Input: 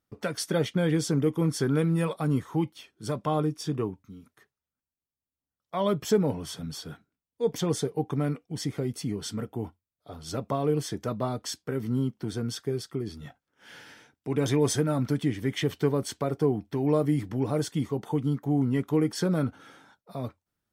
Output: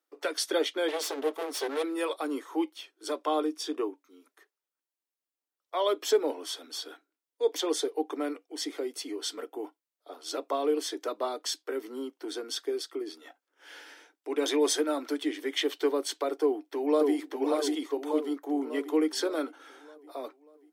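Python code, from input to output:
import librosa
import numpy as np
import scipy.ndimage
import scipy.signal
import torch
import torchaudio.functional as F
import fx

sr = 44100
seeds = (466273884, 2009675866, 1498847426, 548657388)

y = fx.lower_of_two(x, sr, delay_ms=4.5, at=(0.88, 1.83))
y = fx.echo_throw(y, sr, start_s=16.4, length_s=0.75, ms=590, feedback_pct=50, wet_db=-3.0)
y = scipy.signal.sosfilt(scipy.signal.butter(12, 290.0, 'highpass', fs=sr, output='sos'), y)
y = fx.dynamic_eq(y, sr, hz=3700.0, q=1.8, threshold_db=-52.0, ratio=4.0, max_db=6)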